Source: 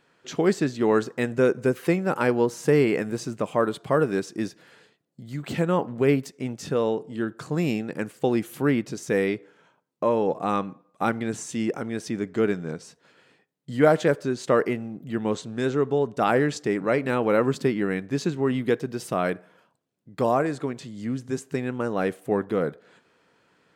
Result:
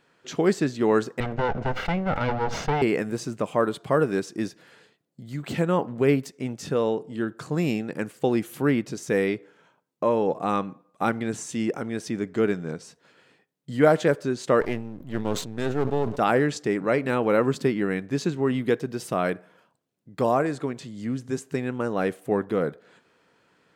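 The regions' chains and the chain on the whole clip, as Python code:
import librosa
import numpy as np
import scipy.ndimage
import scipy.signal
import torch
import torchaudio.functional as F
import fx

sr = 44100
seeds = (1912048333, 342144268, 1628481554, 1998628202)

y = fx.chain(x, sr, fx.lower_of_two(delay_ms=1.4),
    fx.air_absorb(metres=220.0),
    fx.sustainer(db_per_s=58.0), at=(1.2, 2.82))
y = fx.chain(y, sr, fx.halfwave_gain(db=-12.0),
    fx.sustainer(db_per_s=89.0), at=(14.61, 16.19))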